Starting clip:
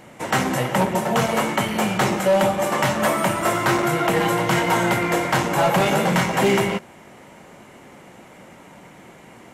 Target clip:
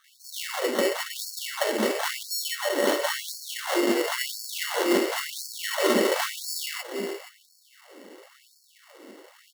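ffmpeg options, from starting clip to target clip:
-filter_complex "[0:a]acrossover=split=6000[a][b];[a]crystalizer=i=4.5:c=0[c];[c][b]amix=inputs=2:normalize=0,asuperstop=centerf=1100:order=12:qfactor=0.75,acrossover=split=4700[d][e];[d]adelay=40[f];[f][e]amix=inputs=2:normalize=0,acrusher=samples=18:mix=1:aa=0.000001,asplit=2[g][h];[h]aecho=0:1:474:0.237[i];[g][i]amix=inputs=2:normalize=0,afftfilt=real='re*gte(b*sr/1024,210*pow(4300/210,0.5+0.5*sin(2*PI*0.96*pts/sr)))':imag='im*gte(b*sr/1024,210*pow(4300/210,0.5+0.5*sin(2*PI*0.96*pts/sr)))':win_size=1024:overlap=0.75"

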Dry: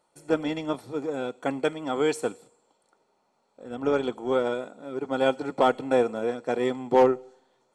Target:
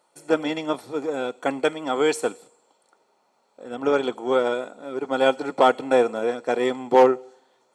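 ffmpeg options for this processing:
-af "highpass=f=340:p=1,volume=5.5dB"

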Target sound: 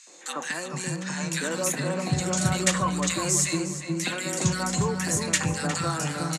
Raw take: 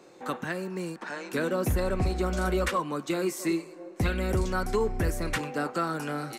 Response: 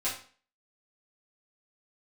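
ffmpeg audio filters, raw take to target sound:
-filter_complex "[0:a]highpass=f=120:w=0.5412,highpass=f=120:w=1.3066,equalizer=f=150:t=q:w=4:g=8,equalizer=f=400:t=q:w=4:g=-6,equalizer=f=1k:t=q:w=4:g=4,equalizer=f=1.8k:t=q:w=4:g=6,equalizer=f=6.9k:t=q:w=4:g=9,lowpass=f=9.4k:w=0.5412,lowpass=f=9.4k:w=1.3066,asplit=2[a][b];[b]adelay=358,lowpass=f=3.5k:p=1,volume=-7dB,asplit=2[c][d];[d]adelay=358,lowpass=f=3.5k:p=1,volume=0.35,asplit=2[e][f];[f]adelay=358,lowpass=f=3.5k:p=1,volume=0.35,asplit=2[g][h];[h]adelay=358,lowpass=f=3.5k:p=1,volume=0.35[i];[c][e][g][i]amix=inputs=4:normalize=0[j];[a][j]amix=inputs=2:normalize=0,asettb=1/sr,asplit=3[k][l][m];[k]atrim=end=1.724[n];[l]atrim=start=1.72:end=2.13,asetpts=PTS-STARTPTS,afade=t=in:d=0.004:c=qsin,afade=t=out:st=0.406:d=0.004:c=qsin,acrossover=split=3600[o][p];[p]acompressor=threshold=-51dB:ratio=4:attack=1:release=60[q];[o][q]amix=inputs=2:normalize=0[r];[m]atrim=start=2.126[s];[n][r]acrossfade=d=0.004:c1=hsin:c2=qsin[t];[t][s]acrossfade=d=0.004:c1=qsin:c2=hsin,acrossover=split=1800[u][v];[v]crystalizer=i=5.5:c=0[w];[u][w]amix=inputs=2:normalize=0,bass=f=250:g=5,treble=f=4k:g=-3,acrossover=split=260|1500[x][y][z];[y]adelay=70[aa];[x]adelay=440[ab];[ab][aa][z]amix=inputs=3:normalize=0"

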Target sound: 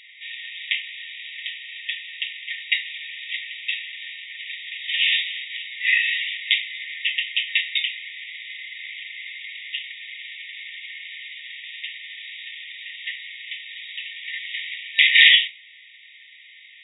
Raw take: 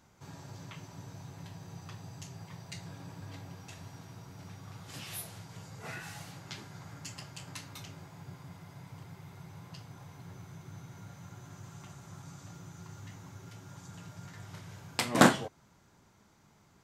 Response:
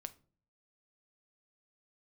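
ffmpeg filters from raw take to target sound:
-filter_complex "[0:a]asplit=2[a][b];[1:a]atrim=start_sample=2205[c];[b][c]afir=irnorm=-1:irlink=0,volume=14dB[d];[a][d]amix=inputs=2:normalize=0,acrusher=bits=4:mode=log:mix=0:aa=0.000001,afftfilt=real='re*between(b*sr/4096,1800,3800)':imag='im*between(b*sr/4096,1800,3800)':win_size=4096:overlap=0.75,alimiter=level_in=18.5dB:limit=-1dB:release=50:level=0:latency=1,volume=-1dB"

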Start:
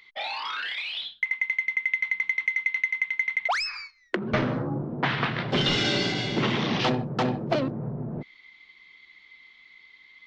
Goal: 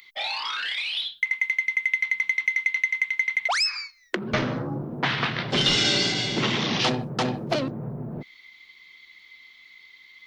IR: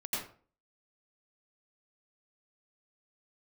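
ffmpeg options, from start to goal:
-af "aemphasis=mode=production:type=75fm"

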